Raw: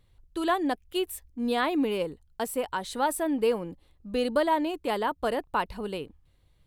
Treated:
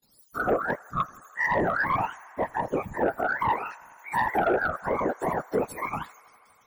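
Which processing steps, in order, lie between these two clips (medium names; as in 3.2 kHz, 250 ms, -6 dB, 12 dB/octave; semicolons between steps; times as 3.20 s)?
spectrum inverted on a logarithmic axis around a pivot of 670 Hz; high-pass 240 Hz 12 dB/octave; gate with hold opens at -60 dBFS; peaking EQ 2.6 kHz -5.5 dB 0.63 oct; in parallel at +0.5 dB: peak limiter -25 dBFS, peak gain reduction 9 dB; on the sum: whisper effect; sine folder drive 4 dB, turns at -9.5 dBFS; on a send: feedback echo behind a band-pass 82 ms, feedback 84%, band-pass 1.5 kHz, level -23 dB; on the sum: trim -7.5 dB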